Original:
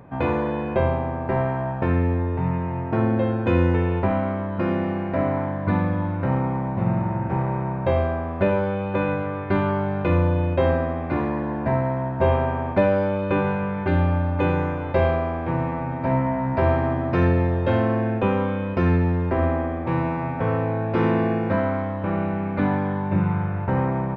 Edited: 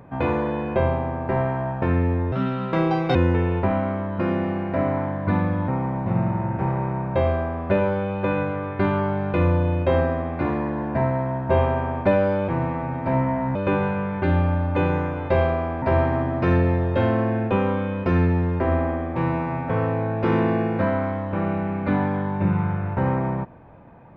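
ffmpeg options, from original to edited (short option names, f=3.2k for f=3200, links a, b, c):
-filter_complex "[0:a]asplit=7[a][b][c][d][e][f][g];[a]atrim=end=2.324[h];[b]atrim=start=2.32:end=3.55,asetpts=PTS-STARTPTS,asetrate=65268,aresample=44100[i];[c]atrim=start=3.546:end=6.082[j];[d]atrim=start=6.388:end=13.192[k];[e]atrim=start=15.458:end=16.532[l];[f]atrim=start=13.188:end=15.462[m];[g]atrim=start=16.528[n];[h][i]acrossfade=d=0.004:c1=hsin:c2=hsin[o];[o][j]acrossfade=d=0.004:c1=hsin:c2=hsin[p];[p][k]acrossfade=d=0.004:c1=hsin:c2=hsin[q];[q][l]acrossfade=d=0.004:c1=hsin:c2=hsin[r];[r][m]acrossfade=d=0.004:c1=hsin:c2=hsin[s];[s][n]acrossfade=d=0.004:c1=hsin:c2=hsin"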